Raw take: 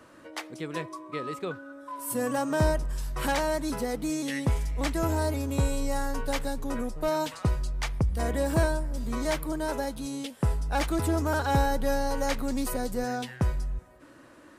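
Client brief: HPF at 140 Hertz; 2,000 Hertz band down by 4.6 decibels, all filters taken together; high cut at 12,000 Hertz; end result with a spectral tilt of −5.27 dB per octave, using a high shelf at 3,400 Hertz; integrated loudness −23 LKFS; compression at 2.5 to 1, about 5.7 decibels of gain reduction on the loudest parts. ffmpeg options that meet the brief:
ffmpeg -i in.wav -af "highpass=140,lowpass=12000,equalizer=frequency=2000:width_type=o:gain=-5,highshelf=frequency=3400:gain=-4,acompressor=threshold=-31dB:ratio=2.5,volume=12.5dB" out.wav

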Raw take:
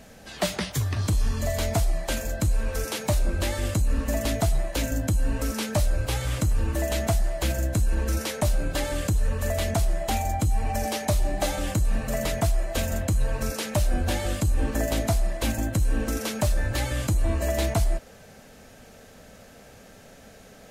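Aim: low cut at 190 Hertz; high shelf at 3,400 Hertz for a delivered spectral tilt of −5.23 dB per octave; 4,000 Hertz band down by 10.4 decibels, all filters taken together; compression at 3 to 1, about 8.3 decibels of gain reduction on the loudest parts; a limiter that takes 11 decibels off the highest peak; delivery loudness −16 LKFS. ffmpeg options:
ffmpeg -i in.wav -af "highpass=190,highshelf=frequency=3400:gain=-8,equalizer=frequency=4000:width_type=o:gain=-8,acompressor=threshold=-34dB:ratio=3,volume=24.5dB,alimiter=limit=-6.5dB:level=0:latency=1" out.wav

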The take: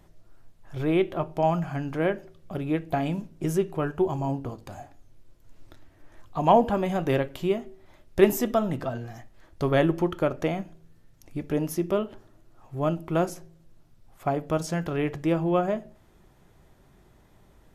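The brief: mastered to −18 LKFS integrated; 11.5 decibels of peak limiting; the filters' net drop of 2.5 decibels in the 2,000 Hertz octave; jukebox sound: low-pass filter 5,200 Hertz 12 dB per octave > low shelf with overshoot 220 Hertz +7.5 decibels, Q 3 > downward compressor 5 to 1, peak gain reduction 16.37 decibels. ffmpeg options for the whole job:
ffmpeg -i in.wav -af "equalizer=frequency=2000:width_type=o:gain=-3,alimiter=limit=-16dB:level=0:latency=1,lowpass=5200,lowshelf=frequency=220:width_type=q:width=3:gain=7.5,acompressor=threshold=-31dB:ratio=5,volume=16.5dB" out.wav

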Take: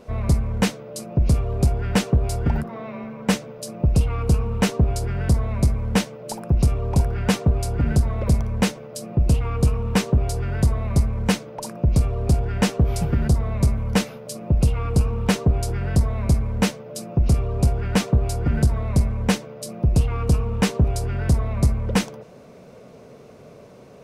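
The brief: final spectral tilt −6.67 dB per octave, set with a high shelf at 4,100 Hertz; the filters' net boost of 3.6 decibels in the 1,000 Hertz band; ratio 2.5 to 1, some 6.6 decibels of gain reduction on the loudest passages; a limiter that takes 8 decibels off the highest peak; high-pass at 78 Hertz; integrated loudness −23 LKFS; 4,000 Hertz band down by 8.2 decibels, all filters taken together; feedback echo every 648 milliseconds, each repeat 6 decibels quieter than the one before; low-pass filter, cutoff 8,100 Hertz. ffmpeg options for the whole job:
ffmpeg -i in.wav -af "highpass=78,lowpass=8100,equalizer=frequency=1000:width_type=o:gain=5.5,equalizer=frequency=4000:width_type=o:gain=-7,highshelf=frequency=4100:gain=-7.5,acompressor=threshold=-24dB:ratio=2.5,alimiter=limit=-20dB:level=0:latency=1,aecho=1:1:648|1296|1944|2592|3240|3888:0.501|0.251|0.125|0.0626|0.0313|0.0157,volume=6.5dB" out.wav

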